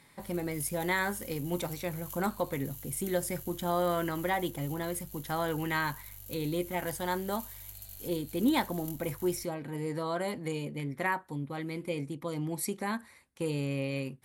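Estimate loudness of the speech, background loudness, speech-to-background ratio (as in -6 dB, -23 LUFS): -34.0 LUFS, -45.0 LUFS, 11.0 dB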